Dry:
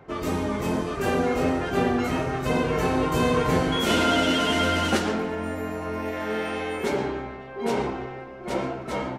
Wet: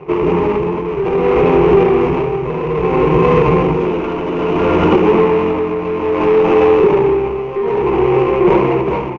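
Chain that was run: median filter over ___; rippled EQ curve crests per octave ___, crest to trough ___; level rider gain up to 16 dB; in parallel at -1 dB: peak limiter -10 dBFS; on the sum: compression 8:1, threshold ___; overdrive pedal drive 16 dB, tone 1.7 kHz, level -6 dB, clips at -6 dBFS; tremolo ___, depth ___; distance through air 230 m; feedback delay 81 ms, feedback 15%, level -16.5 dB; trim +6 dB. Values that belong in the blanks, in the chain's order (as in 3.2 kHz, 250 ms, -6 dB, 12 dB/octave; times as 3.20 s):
41 samples, 0.74, 14 dB, -14 dBFS, 0.6 Hz, 65%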